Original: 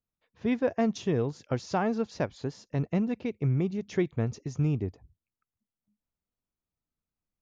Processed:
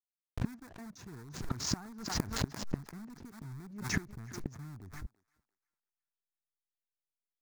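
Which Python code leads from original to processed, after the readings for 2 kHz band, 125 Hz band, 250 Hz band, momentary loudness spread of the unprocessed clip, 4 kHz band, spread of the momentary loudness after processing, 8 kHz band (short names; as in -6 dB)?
-2.5 dB, -10.0 dB, -11.5 dB, 6 LU, +4.5 dB, 14 LU, n/a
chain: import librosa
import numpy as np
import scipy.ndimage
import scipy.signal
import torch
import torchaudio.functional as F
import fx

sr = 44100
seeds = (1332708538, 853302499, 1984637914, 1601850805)

p1 = (np.mod(10.0 ** (24.0 / 20.0) * x + 1.0, 2.0) - 1.0) / 10.0 ** (24.0 / 20.0)
p2 = x + (p1 * 10.0 ** (-6.0 / 20.0))
p3 = fx.fixed_phaser(p2, sr, hz=1300.0, stages=4)
p4 = fx.backlash(p3, sr, play_db=-44.5)
p5 = fx.gate_flip(p4, sr, shuts_db=-33.0, range_db=-32)
p6 = p5 + fx.echo_thinned(p5, sr, ms=344, feedback_pct=37, hz=760.0, wet_db=-17, dry=0)
p7 = fx.pre_swell(p6, sr, db_per_s=79.0)
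y = p7 * 10.0 ** (13.5 / 20.0)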